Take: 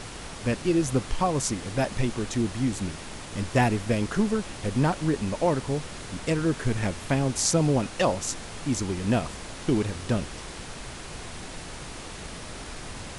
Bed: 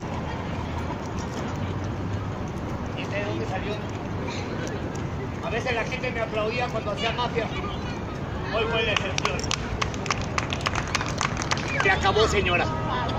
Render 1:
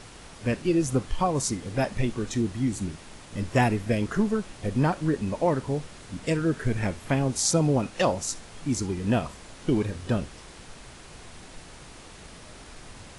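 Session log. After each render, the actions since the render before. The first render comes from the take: noise print and reduce 7 dB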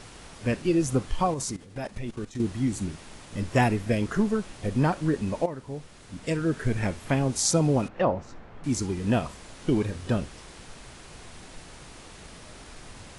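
1.34–2.4 level quantiser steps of 16 dB; 5.46–6.64 fade in linear, from -13 dB; 7.88–8.64 LPF 1600 Hz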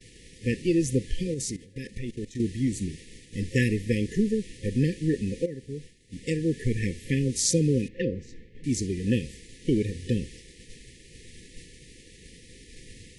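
expander -41 dBFS; FFT band-reject 530–1700 Hz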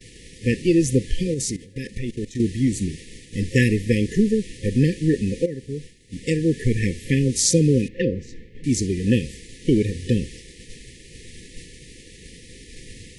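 gain +6 dB; limiter -3 dBFS, peak gain reduction 2 dB

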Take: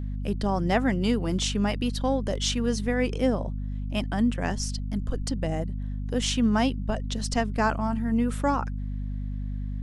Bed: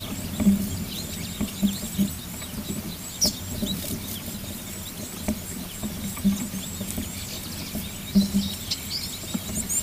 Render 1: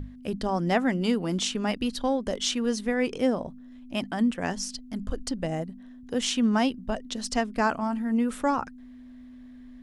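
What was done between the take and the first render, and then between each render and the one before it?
notches 50/100/150/200 Hz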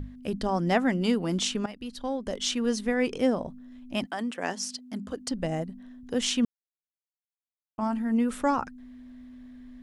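1.66–2.65 fade in, from -15.5 dB; 4.05–5.31 HPF 460 Hz -> 120 Hz; 6.45–7.78 mute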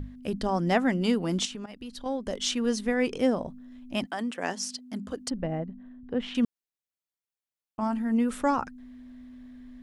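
1.45–2.06 compressor 5:1, threshold -35 dBFS; 5.3–6.35 air absorption 480 m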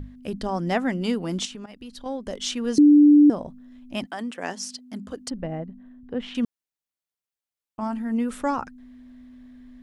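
2.78–3.3 bleep 294 Hz -9.5 dBFS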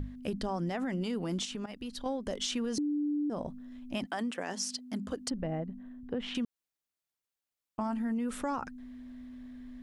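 limiter -21.5 dBFS, peak gain reduction 12 dB; compressor, threshold -30 dBFS, peak gain reduction 6.5 dB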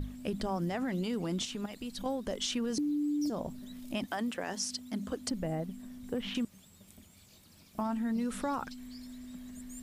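add bed -25.5 dB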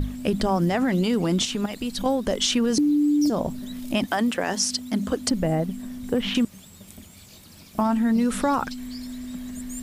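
gain +11.5 dB

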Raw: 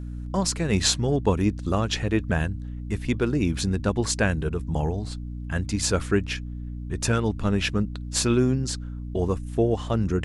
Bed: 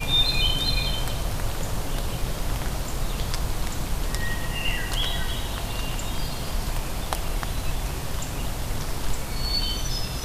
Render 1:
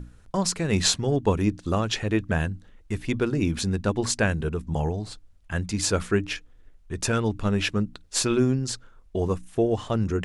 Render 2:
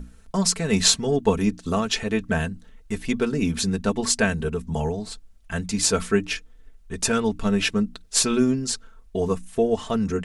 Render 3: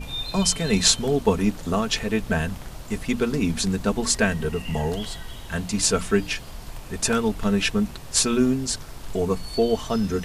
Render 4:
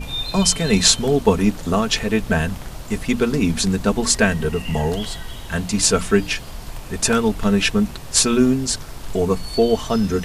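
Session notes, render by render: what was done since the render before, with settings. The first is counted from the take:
notches 60/120/180/240/300 Hz
high shelf 5000 Hz +5.5 dB; comb 4.5 ms, depth 67%
add bed -10 dB
gain +4.5 dB; limiter -1 dBFS, peak gain reduction 1.5 dB

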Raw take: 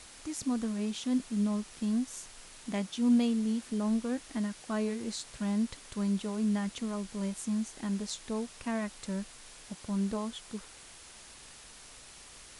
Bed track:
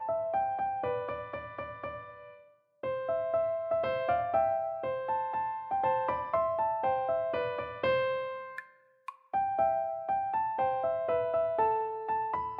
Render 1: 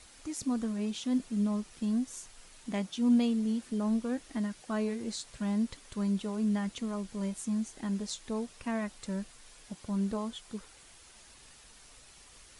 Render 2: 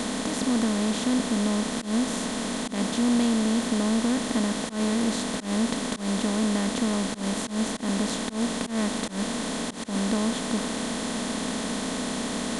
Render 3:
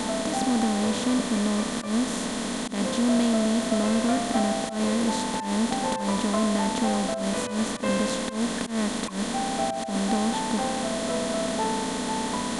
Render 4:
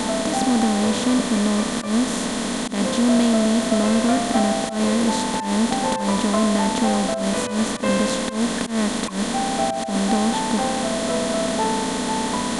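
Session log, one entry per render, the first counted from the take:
denoiser 6 dB, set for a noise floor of -52 dBFS
per-bin compression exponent 0.2; auto swell 0.129 s
add bed track -1 dB
gain +5 dB

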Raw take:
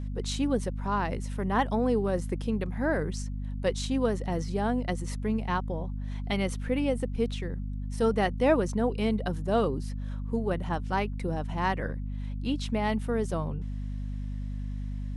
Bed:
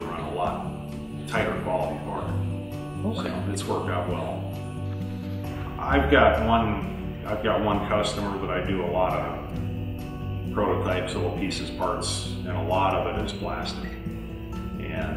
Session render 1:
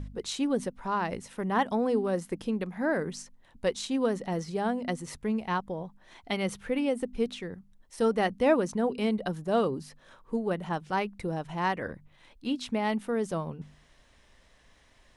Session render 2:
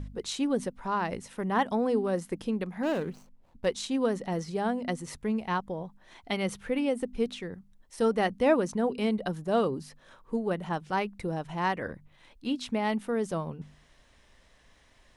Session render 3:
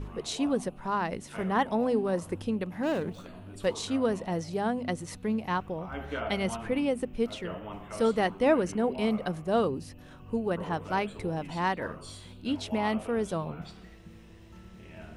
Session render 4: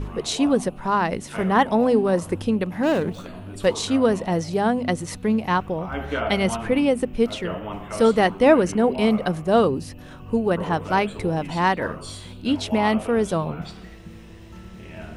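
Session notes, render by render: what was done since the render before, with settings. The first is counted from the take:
de-hum 50 Hz, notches 5
2.83–3.66 median filter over 25 samples
add bed -17 dB
gain +8.5 dB

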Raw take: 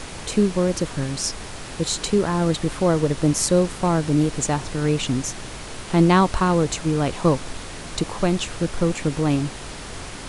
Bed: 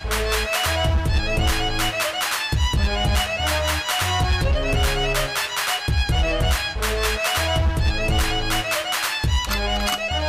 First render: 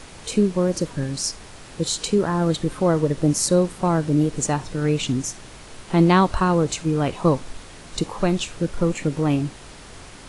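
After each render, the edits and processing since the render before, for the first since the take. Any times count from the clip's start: noise print and reduce 7 dB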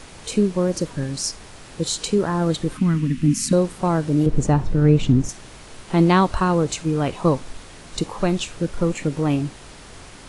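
2.77–3.53 EQ curve 130 Hz 0 dB, 250 Hz +12 dB, 380 Hz -15 dB, 540 Hz -26 dB, 1100 Hz -8 dB, 2600 Hz +6 dB, 3800 Hz -3 dB; 4.26–5.29 tilt -3 dB/oct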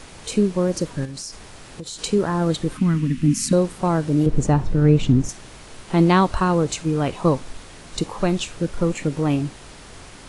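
1.05–1.99 compressor 10:1, threshold -29 dBFS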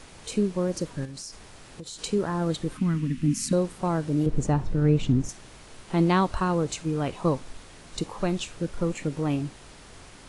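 gain -6 dB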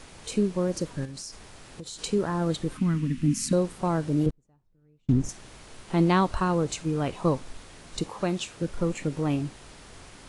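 4.3–5.09 flipped gate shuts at -30 dBFS, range -41 dB; 8.08–8.62 HPF 120 Hz 6 dB/oct

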